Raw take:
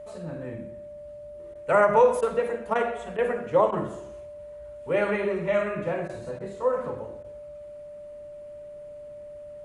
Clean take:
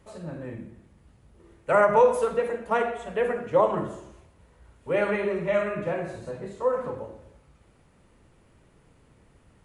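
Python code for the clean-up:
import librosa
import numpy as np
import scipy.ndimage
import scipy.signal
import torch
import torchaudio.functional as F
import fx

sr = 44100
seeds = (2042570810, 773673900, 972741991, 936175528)

y = fx.notch(x, sr, hz=590.0, q=30.0)
y = fx.fix_interpolate(y, sr, at_s=(1.54, 2.21, 2.74, 3.17, 3.71, 6.08, 6.39, 7.23), length_ms=12.0)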